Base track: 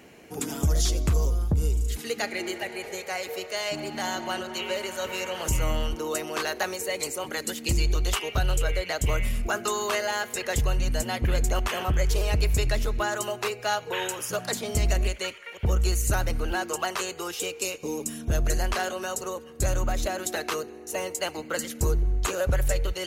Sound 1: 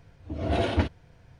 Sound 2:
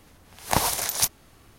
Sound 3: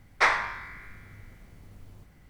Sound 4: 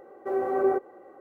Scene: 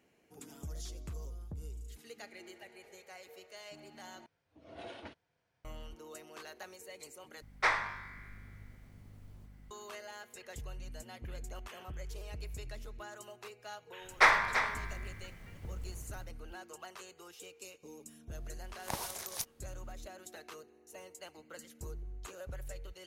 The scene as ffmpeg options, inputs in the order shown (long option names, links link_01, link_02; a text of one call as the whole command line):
ffmpeg -i bed.wav -i cue0.wav -i cue1.wav -i cue2.wav -filter_complex "[3:a]asplit=2[link_01][link_02];[0:a]volume=-20dB[link_03];[1:a]highpass=frequency=570:poles=1[link_04];[link_01]aeval=exprs='val(0)+0.00398*(sin(2*PI*50*n/s)+sin(2*PI*2*50*n/s)/2+sin(2*PI*3*50*n/s)/3+sin(2*PI*4*50*n/s)/4+sin(2*PI*5*50*n/s)/5)':channel_layout=same[link_05];[link_02]aecho=1:1:336:0.355[link_06];[link_03]asplit=3[link_07][link_08][link_09];[link_07]atrim=end=4.264[link_10];[link_04]atrim=end=1.39,asetpts=PTS-STARTPTS,volume=-17dB[link_11];[link_08]atrim=start=5.646:end=7.424[link_12];[link_05]atrim=end=2.29,asetpts=PTS-STARTPTS,volume=-7dB[link_13];[link_09]atrim=start=9.706[link_14];[link_06]atrim=end=2.29,asetpts=PTS-STARTPTS,volume=-1dB,afade=type=in:duration=0.1,afade=type=out:start_time=2.19:duration=0.1,adelay=14000[link_15];[2:a]atrim=end=1.58,asetpts=PTS-STARTPTS,volume=-16dB,afade=type=in:duration=0.004:curve=hsin,afade=type=out:start_time=1.576:duration=0.004:curve=hsin,adelay=18370[link_16];[link_10][link_11]acrossfade=duration=0.004:curve1=hsin:curve2=hsin[link_17];[link_17][link_12]acrossfade=duration=0.004:curve1=hsin:curve2=hsin[link_18];[link_18][link_13]acrossfade=duration=0.004:curve1=hsin:curve2=hsin[link_19];[link_19][link_14]acrossfade=duration=0.004:curve1=hsin:curve2=hsin[link_20];[link_20][link_15][link_16]amix=inputs=3:normalize=0" out.wav